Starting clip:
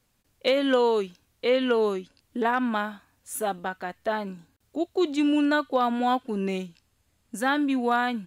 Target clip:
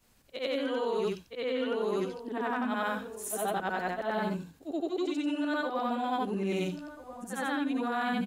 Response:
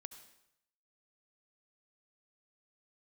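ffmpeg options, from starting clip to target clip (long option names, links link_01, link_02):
-filter_complex "[0:a]afftfilt=real='re':imag='-im':win_size=8192:overlap=0.75,acontrast=55,asplit=2[link_01][link_02];[link_02]adelay=1341,volume=-25dB,highshelf=frequency=4000:gain=-30.2[link_03];[link_01][link_03]amix=inputs=2:normalize=0,areverse,acompressor=threshold=-31dB:ratio=20,areverse,volume=3.5dB"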